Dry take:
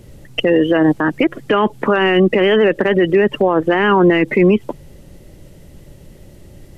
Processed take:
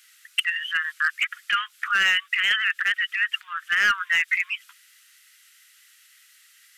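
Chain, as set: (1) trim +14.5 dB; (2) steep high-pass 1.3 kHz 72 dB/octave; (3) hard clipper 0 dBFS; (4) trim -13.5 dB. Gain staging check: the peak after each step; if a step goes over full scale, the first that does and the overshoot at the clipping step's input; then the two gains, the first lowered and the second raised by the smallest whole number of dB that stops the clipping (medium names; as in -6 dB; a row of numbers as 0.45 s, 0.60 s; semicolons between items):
+9.5 dBFS, +9.5 dBFS, 0.0 dBFS, -13.5 dBFS; step 1, 9.5 dB; step 1 +4.5 dB, step 4 -3.5 dB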